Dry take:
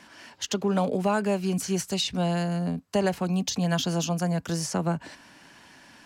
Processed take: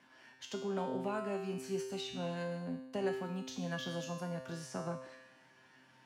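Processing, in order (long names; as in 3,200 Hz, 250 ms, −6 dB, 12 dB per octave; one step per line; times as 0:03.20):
high-pass filter 83 Hz
bass and treble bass 0 dB, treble −8 dB
tuned comb filter 130 Hz, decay 0.96 s, harmonics all, mix 90%
level +3 dB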